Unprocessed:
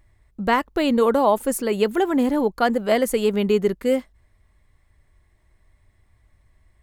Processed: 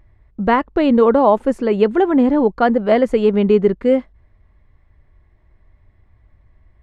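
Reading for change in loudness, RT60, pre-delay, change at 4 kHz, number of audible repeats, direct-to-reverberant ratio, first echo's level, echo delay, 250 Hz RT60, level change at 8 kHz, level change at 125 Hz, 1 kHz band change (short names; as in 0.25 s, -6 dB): +5.5 dB, none, none, -2.5 dB, none, none, none, none, none, under -15 dB, +6.5 dB, +4.5 dB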